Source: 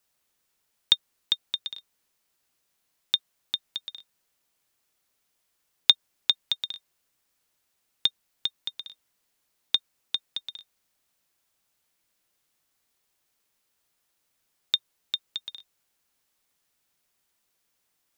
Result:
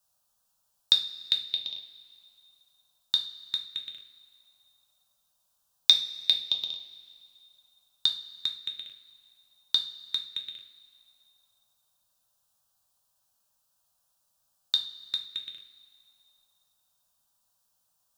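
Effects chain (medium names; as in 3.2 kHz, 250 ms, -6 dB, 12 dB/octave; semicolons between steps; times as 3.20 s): touch-sensitive phaser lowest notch 360 Hz, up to 1.8 kHz, full sweep at -31 dBFS; two-slope reverb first 0.36 s, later 2.5 s, from -18 dB, DRR 2 dB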